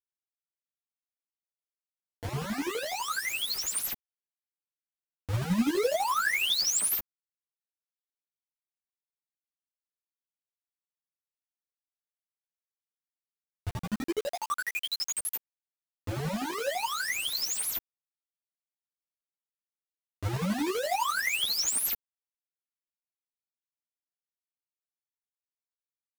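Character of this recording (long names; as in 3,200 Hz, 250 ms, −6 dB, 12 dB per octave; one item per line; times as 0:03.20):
chopped level 12 Hz, depth 60%, duty 30%
a quantiser's noise floor 6 bits, dither none
a shimmering, thickened sound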